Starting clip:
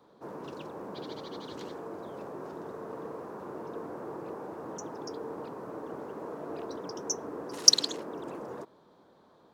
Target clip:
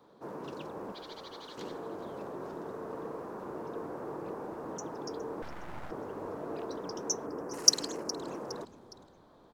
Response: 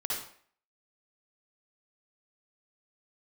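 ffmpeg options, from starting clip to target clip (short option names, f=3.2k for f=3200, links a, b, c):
-filter_complex "[0:a]asettb=1/sr,asplit=3[a][b][c];[a]atrim=end=0.924[d];[b]atrim=start=0.92:end=1.58,asetpts=PTS-STARTPTS,afade=t=in:d=0.004:c=qsin,afade=t=out:st=0.656:d=0.004:c=qsin,highpass=f=850:p=1[e];[c]atrim=start=1.576[f];[d][e]acrossfade=d=0.004:c1=hsin:c2=qsin[g];[g][f]acrossfade=d=0.004:c1=qsin:c2=hsin,asettb=1/sr,asplit=3[h][i][j];[h]atrim=end=5.424[k];[i]atrim=start=5.42:end=5.91,asetpts=PTS-STARTPTS,afade=t=in:d=0.004:c=qsin,afade=t=out:st=0.486:d=0.004:c=qsin,aeval=exprs='abs(val(0))':c=same[l];[j]atrim=start=5.906[m];[k][l]acrossfade=d=0.004:c1=hsin:c2=qsin[n];[n][m]acrossfade=d=0.004:c1=qsin:c2=hsin,asettb=1/sr,asplit=3[o][p][q];[o]atrim=end=7.264[r];[p]atrim=start=7.26:end=8.21,asetpts=PTS-STARTPTS,afade=t=in:d=0.004:c=qsin,afade=t=out:st=0.946:d=0.004:c=qsin,equalizer=f=3.6k:t=o:w=0.57:g=-15[s];[q]atrim=start=8.206[t];[r][s]acrossfade=d=0.004:c1=hsin:c2=qsin[u];[u][t]acrossfade=d=0.004:c1=qsin:c2=hsin,asplit=4[v][w][x][y];[w]adelay=413,afreqshift=-100,volume=-17dB[z];[x]adelay=826,afreqshift=-200,volume=-25.2dB[aa];[y]adelay=1239,afreqshift=-300,volume=-33.4dB[ab];[v][z][aa][ab]amix=inputs=4:normalize=0"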